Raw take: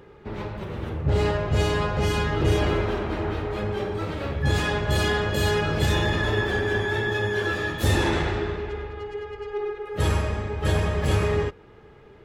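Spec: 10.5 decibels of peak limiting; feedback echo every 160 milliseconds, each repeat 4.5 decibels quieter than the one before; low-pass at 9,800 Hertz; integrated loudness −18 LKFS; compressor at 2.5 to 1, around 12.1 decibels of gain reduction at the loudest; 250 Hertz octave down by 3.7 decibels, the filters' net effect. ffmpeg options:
ffmpeg -i in.wav -af "lowpass=9800,equalizer=frequency=250:width_type=o:gain=-6,acompressor=threshold=-37dB:ratio=2.5,alimiter=level_in=9dB:limit=-24dB:level=0:latency=1,volume=-9dB,aecho=1:1:160|320|480|640|800|960|1120|1280|1440:0.596|0.357|0.214|0.129|0.0772|0.0463|0.0278|0.0167|0.01,volume=22dB" out.wav

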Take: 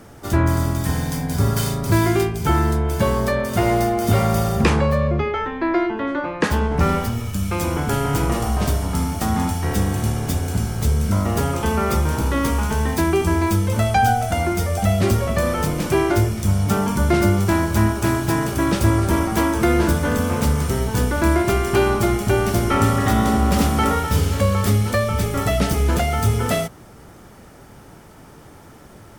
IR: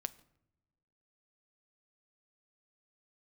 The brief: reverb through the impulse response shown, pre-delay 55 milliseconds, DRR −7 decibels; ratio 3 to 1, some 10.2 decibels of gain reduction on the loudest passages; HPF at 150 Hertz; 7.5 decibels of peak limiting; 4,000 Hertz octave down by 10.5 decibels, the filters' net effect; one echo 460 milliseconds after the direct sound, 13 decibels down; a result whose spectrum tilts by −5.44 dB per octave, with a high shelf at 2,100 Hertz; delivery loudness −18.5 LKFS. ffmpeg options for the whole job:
-filter_complex "[0:a]highpass=150,highshelf=frequency=2100:gain=-7,equalizer=frequency=4000:width_type=o:gain=-7.5,acompressor=threshold=-29dB:ratio=3,alimiter=limit=-22.5dB:level=0:latency=1,aecho=1:1:460:0.224,asplit=2[link_01][link_02];[1:a]atrim=start_sample=2205,adelay=55[link_03];[link_02][link_03]afir=irnorm=-1:irlink=0,volume=8.5dB[link_04];[link_01][link_04]amix=inputs=2:normalize=0,volume=5dB"

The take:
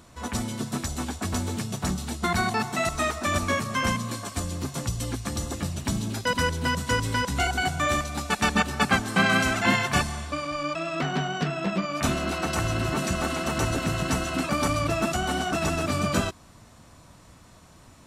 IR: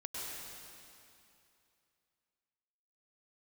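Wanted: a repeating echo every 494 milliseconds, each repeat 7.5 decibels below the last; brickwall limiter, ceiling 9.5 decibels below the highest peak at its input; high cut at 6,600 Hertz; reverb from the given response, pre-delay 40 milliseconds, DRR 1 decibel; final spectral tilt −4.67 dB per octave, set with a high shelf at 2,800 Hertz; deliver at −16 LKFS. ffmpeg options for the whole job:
-filter_complex "[0:a]lowpass=6600,highshelf=frequency=2800:gain=-6,alimiter=limit=-20.5dB:level=0:latency=1,aecho=1:1:494|988|1482|1976|2470:0.422|0.177|0.0744|0.0312|0.0131,asplit=2[link_01][link_02];[1:a]atrim=start_sample=2205,adelay=40[link_03];[link_02][link_03]afir=irnorm=-1:irlink=0,volume=-2dB[link_04];[link_01][link_04]amix=inputs=2:normalize=0,volume=11dB"

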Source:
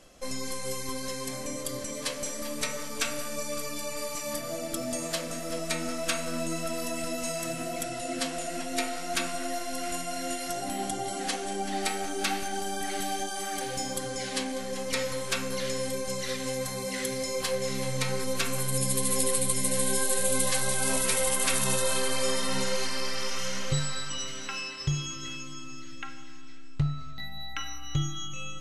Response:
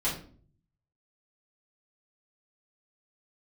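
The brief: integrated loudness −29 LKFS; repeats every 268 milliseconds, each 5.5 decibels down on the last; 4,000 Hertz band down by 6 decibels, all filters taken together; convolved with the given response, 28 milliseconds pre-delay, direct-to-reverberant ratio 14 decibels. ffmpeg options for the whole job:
-filter_complex "[0:a]equalizer=frequency=4000:width_type=o:gain=-8,aecho=1:1:268|536|804|1072|1340|1608|1876:0.531|0.281|0.149|0.079|0.0419|0.0222|0.0118,asplit=2[link_01][link_02];[1:a]atrim=start_sample=2205,adelay=28[link_03];[link_02][link_03]afir=irnorm=-1:irlink=0,volume=-22dB[link_04];[link_01][link_04]amix=inputs=2:normalize=0,volume=1.5dB"

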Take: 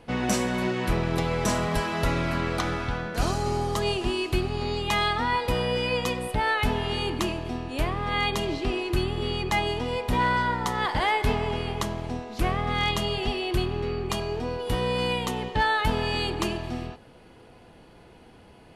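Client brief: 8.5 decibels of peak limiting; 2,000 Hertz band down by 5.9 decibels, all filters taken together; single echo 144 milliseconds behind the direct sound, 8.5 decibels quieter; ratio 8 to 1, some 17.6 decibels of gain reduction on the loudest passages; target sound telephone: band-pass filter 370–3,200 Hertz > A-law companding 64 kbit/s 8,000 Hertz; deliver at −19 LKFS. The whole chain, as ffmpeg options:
ffmpeg -i in.wav -af "equalizer=frequency=2000:width_type=o:gain=-6.5,acompressor=threshold=-39dB:ratio=8,alimiter=level_in=11.5dB:limit=-24dB:level=0:latency=1,volume=-11.5dB,highpass=370,lowpass=3200,aecho=1:1:144:0.376,volume=28.5dB" -ar 8000 -c:a pcm_alaw out.wav

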